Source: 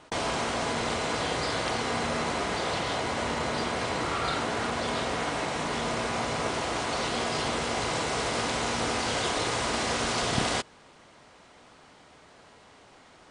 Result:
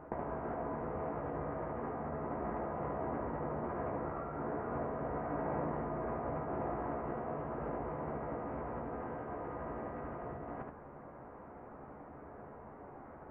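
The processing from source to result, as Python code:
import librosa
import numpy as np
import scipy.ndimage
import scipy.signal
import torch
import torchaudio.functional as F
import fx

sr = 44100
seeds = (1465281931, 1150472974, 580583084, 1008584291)

p1 = fx.over_compress(x, sr, threshold_db=-34.0, ratio=-0.5)
p2 = scipy.ndimage.gaussian_filter1d(p1, 6.8, mode='constant')
p3 = fx.doubler(p2, sr, ms=14.0, db=-7.5)
p4 = p3 + fx.echo_single(p3, sr, ms=74, db=-4.5, dry=0)
y = F.gain(torch.from_numpy(p4), -2.0).numpy()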